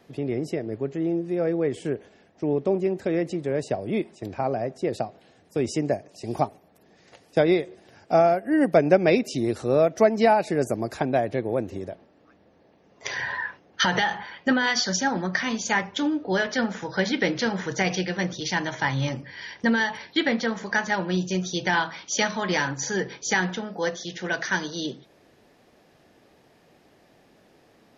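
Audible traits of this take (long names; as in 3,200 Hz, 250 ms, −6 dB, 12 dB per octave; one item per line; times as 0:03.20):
background noise floor −59 dBFS
spectral slope −4.5 dB per octave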